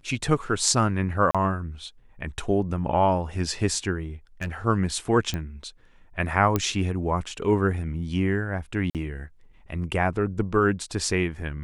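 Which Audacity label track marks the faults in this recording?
1.310000	1.350000	gap 36 ms
4.410000	4.490000	clipped -25 dBFS
5.340000	5.340000	pop -15 dBFS
6.560000	6.560000	pop -9 dBFS
8.900000	8.950000	gap 48 ms

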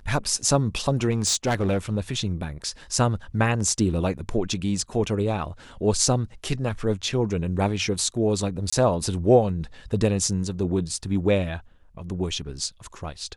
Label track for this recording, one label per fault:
1.110000	1.970000	clipped -17.5 dBFS
8.700000	8.720000	gap 25 ms

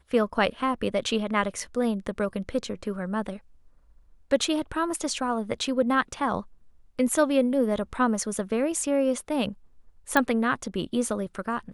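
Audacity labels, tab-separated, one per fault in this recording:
10.170000	10.170000	pop -8 dBFS

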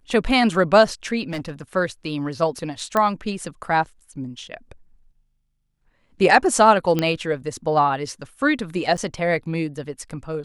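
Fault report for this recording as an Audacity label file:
1.290000	1.760000	clipped -24 dBFS
2.970000	2.970000	pop -8 dBFS
6.990000	6.990000	pop -8 dBFS
8.970000	8.980000	gap 8 ms

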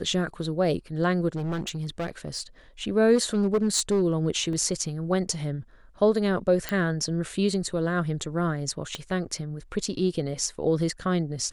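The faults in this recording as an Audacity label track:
1.350000	2.420000	clipped -26 dBFS
3.150000	4.030000	clipped -18 dBFS
4.530000	4.530000	gap 2.1 ms
6.690000	6.690000	pop -12 dBFS
8.950000	8.950000	pop -17 dBFS

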